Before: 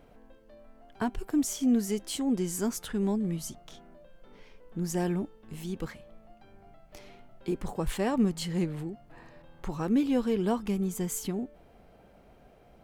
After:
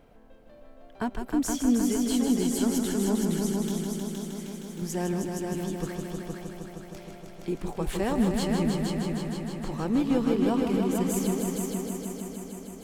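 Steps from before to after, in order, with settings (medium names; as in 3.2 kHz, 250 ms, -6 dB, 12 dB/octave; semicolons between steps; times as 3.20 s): 3.64–4.82 s: RIAA curve recording; multi-head delay 156 ms, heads all three, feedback 68%, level -7.5 dB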